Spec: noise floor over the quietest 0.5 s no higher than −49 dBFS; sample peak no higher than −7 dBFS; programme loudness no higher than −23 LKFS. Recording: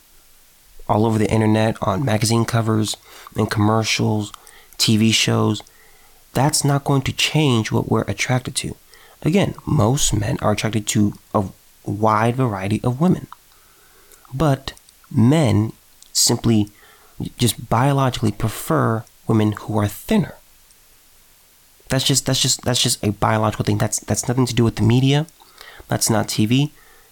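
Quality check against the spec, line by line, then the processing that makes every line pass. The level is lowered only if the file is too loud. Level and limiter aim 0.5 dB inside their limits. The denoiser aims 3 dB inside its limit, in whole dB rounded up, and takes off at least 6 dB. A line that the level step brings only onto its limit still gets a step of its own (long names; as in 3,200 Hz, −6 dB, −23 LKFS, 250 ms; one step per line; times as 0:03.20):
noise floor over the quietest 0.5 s −52 dBFS: in spec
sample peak −5.0 dBFS: out of spec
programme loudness −19.0 LKFS: out of spec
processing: level −4.5 dB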